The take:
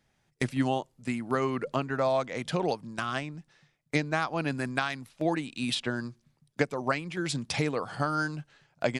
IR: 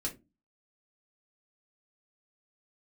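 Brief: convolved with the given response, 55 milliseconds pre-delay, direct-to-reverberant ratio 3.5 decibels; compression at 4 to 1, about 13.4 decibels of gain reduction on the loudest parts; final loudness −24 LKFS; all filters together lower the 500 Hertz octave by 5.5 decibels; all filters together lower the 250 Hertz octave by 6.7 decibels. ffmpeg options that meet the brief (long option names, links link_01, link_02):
-filter_complex "[0:a]equalizer=frequency=250:width_type=o:gain=-7,equalizer=frequency=500:width_type=o:gain=-5.5,acompressor=threshold=-42dB:ratio=4,asplit=2[link_01][link_02];[1:a]atrim=start_sample=2205,adelay=55[link_03];[link_02][link_03]afir=irnorm=-1:irlink=0,volume=-5dB[link_04];[link_01][link_04]amix=inputs=2:normalize=0,volume=18.5dB"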